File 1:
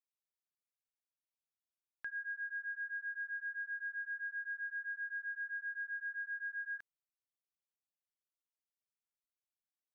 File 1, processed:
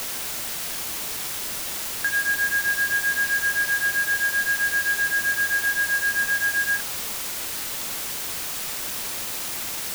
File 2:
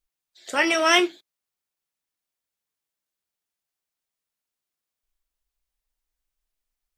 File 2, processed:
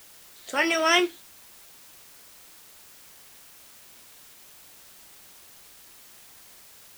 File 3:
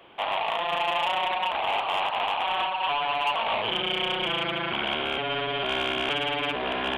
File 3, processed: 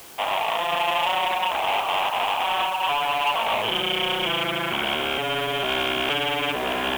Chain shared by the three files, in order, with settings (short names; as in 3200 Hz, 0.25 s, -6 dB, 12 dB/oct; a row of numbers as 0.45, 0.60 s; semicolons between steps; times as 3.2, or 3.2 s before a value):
requantised 8-bit, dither triangular; match loudness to -23 LUFS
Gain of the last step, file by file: +18.0, -2.5, +3.0 dB